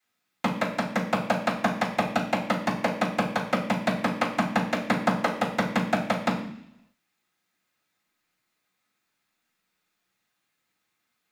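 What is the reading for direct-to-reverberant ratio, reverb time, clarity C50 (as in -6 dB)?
-15.5 dB, 0.70 s, 7.0 dB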